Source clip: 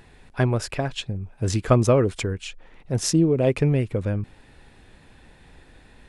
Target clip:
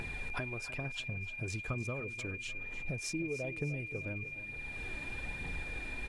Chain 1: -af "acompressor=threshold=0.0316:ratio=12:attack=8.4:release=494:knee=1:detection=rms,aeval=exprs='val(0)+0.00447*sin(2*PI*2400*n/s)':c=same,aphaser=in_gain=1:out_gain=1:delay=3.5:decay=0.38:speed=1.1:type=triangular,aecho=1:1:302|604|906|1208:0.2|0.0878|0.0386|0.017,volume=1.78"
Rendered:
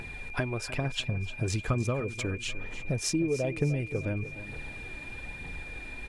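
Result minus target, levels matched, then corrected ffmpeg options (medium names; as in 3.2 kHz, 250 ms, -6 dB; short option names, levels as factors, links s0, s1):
compression: peak gain reduction -9.5 dB
-af "acompressor=threshold=0.00944:ratio=12:attack=8.4:release=494:knee=1:detection=rms,aeval=exprs='val(0)+0.00447*sin(2*PI*2400*n/s)':c=same,aphaser=in_gain=1:out_gain=1:delay=3.5:decay=0.38:speed=1.1:type=triangular,aecho=1:1:302|604|906|1208:0.2|0.0878|0.0386|0.017,volume=1.78"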